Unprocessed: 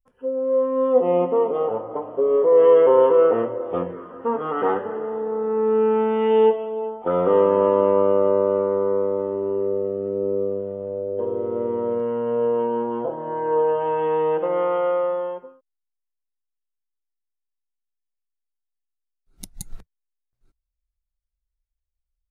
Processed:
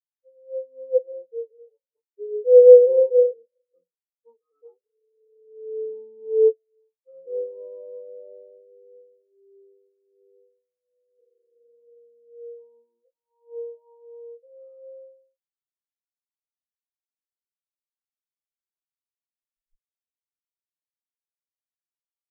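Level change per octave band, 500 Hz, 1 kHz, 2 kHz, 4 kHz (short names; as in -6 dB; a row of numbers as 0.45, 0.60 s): -3.0 dB, under -40 dB, under -40 dB, n/a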